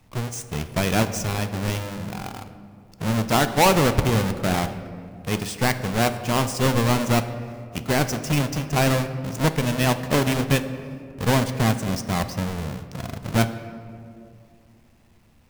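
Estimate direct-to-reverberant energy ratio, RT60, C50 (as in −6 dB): 9.5 dB, 2.4 s, 11.0 dB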